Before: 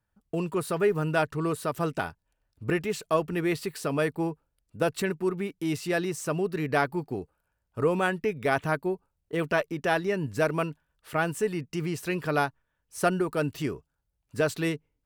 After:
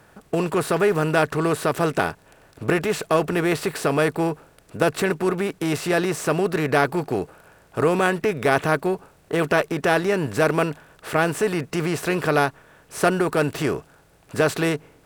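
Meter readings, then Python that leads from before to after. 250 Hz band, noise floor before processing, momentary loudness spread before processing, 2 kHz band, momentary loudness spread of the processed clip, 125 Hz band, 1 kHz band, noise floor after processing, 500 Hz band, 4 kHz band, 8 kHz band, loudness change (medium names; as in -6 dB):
+6.0 dB, -79 dBFS, 8 LU, +7.0 dB, 7 LU, +5.5 dB, +6.5 dB, -55 dBFS, +6.5 dB, +7.5 dB, +7.5 dB, +6.5 dB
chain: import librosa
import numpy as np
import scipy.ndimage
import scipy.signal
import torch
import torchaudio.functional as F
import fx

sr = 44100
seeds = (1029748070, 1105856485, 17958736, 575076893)

y = fx.bin_compress(x, sr, power=0.6)
y = y * 10.0 ** (3.0 / 20.0)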